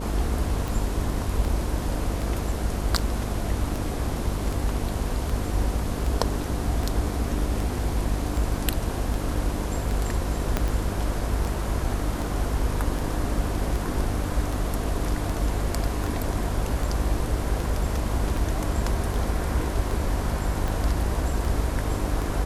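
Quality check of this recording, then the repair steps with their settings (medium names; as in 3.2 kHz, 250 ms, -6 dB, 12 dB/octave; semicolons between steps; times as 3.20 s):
buzz 50 Hz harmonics 12 -30 dBFS
tick 78 rpm
10.57 s: pop -9 dBFS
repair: de-click; de-hum 50 Hz, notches 12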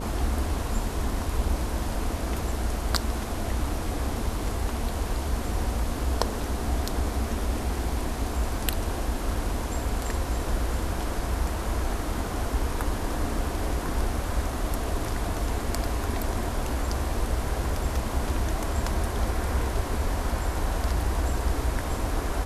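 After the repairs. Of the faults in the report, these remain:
10.57 s: pop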